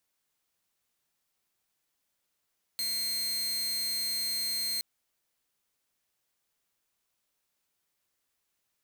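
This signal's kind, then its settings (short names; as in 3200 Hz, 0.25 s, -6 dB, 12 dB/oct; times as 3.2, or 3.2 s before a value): tone saw 4190 Hz -27 dBFS 2.02 s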